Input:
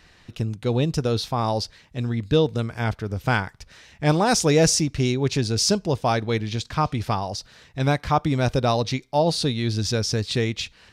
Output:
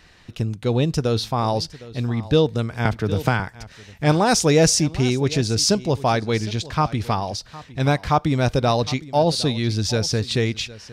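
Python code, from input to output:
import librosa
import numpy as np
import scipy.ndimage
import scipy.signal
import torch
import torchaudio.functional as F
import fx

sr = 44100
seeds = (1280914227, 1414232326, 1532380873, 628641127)

y = x + 10.0 ** (-18.5 / 20.0) * np.pad(x, (int(760 * sr / 1000.0), 0))[:len(x)]
y = fx.band_squash(y, sr, depth_pct=100, at=(2.85, 3.4))
y = F.gain(torch.from_numpy(y), 2.0).numpy()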